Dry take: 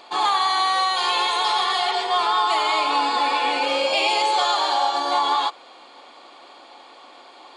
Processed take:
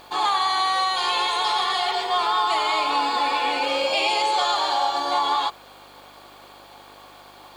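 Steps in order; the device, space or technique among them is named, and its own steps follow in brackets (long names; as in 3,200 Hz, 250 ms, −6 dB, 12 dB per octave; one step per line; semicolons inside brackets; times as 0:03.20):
video cassette with head-switching buzz (hum with harmonics 50 Hz, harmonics 34, −53 dBFS −1 dB per octave; white noise bed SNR 36 dB)
level −1.5 dB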